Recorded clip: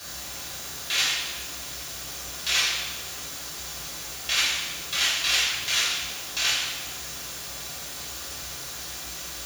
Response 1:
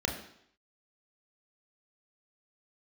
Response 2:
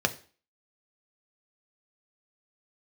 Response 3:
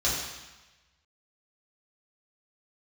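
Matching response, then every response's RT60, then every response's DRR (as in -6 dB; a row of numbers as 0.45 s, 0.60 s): 3; 0.70 s, 0.40 s, 1.1 s; 1.0 dB, 6.0 dB, -7.5 dB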